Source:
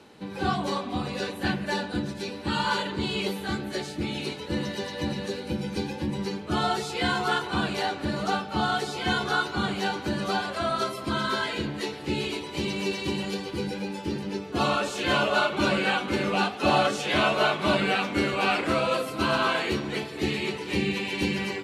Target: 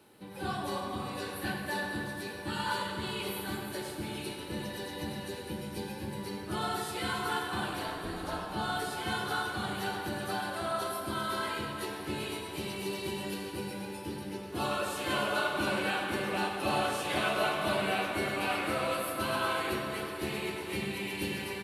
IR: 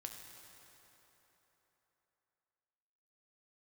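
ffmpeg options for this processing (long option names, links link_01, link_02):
-filter_complex "[0:a]aexciter=amount=5:drive=7:freq=9100,asplit=3[link_01][link_02][link_03];[link_01]afade=type=out:start_time=7.69:duration=0.02[link_04];[link_02]aeval=exprs='val(0)*sin(2*PI*120*n/s)':channel_layout=same,afade=type=in:start_time=7.69:duration=0.02,afade=type=out:start_time=8.4:duration=0.02[link_05];[link_03]afade=type=in:start_time=8.4:duration=0.02[link_06];[link_04][link_05][link_06]amix=inputs=3:normalize=0,asplit=2[link_07][link_08];[link_08]adelay=100,highpass=300,lowpass=3400,asoftclip=type=hard:threshold=-18.5dB,volume=-7dB[link_09];[link_07][link_09]amix=inputs=2:normalize=0[link_10];[1:a]atrim=start_sample=2205[link_11];[link_10][link_11]afir=irnorm=-1:irlink=0,volume=-3.5dB"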